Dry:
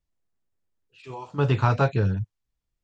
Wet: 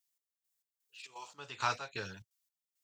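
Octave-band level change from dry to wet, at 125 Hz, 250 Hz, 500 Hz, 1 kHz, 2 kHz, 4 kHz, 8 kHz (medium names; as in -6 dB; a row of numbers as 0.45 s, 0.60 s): -29.0 dB, -24.0 dB, -19.0 dB, -9.5 dB, -6.5 dB, -2.0 dB, no reading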